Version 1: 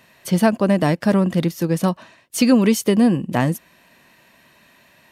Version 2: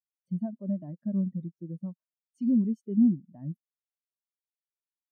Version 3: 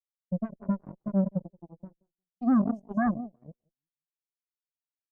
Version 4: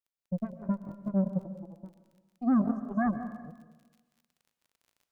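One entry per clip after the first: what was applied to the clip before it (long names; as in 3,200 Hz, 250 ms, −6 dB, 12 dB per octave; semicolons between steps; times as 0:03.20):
notch filter 470 Hz, Q 14; brickwall limiter −11 dBFS, peak gain reduction 6.5 dB; every bin expanded away from the loudest bin 2.5 to 1; level −3.5 dB
repeating echo 177 ms, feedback 28%, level −9.5 dB; harmonic generator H 3 −28 dB, 5 −7 dB, 7 −7 dB, 8 −34 dB, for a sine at −14 dBFS; speech leveller within 4 dB 0.5 s; level −2 dB
surface crackle 38 per second −49 dBFS; dense smooth reverb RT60 1.2 s, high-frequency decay 0.9×, pre-delay 110 ms, DRR 10.5 dB; level −2 dB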